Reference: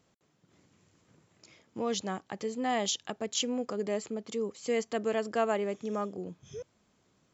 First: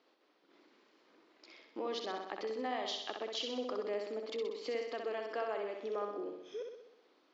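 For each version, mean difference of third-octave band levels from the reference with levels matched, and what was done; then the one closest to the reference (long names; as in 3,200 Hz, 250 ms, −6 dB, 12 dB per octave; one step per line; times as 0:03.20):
8.0 dB: elliptic band-pass filter 300–4,600 Hz, stop band 40 dB
downward compressor 3 to 1, threshold −40 dBFS, peak gain reduction 12.5 dB
flutter between parallel walls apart 10.9 metres, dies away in 0.81 s
level +1.5 dB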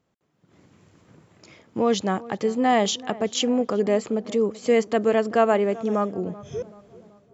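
2.5 dB: automatic gain control gain up to 14 dB
high-shelf EQ 3,300 Hz −9.5 dB
feedback echo with a low-pass in the loop 382 ms, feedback 51%, low-pass 1,600 Hz, level −18.5 dB
level −2.5 dB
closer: second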